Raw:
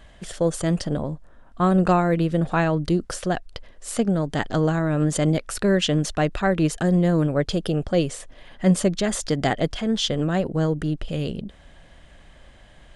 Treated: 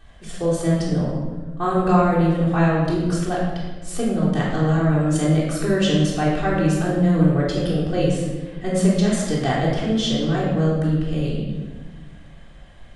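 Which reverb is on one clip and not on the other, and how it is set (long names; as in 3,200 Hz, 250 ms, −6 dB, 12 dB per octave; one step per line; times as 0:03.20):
rectangular room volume 1,000 cubic metres, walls mixed, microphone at 3.6 metres
level −6.5 dB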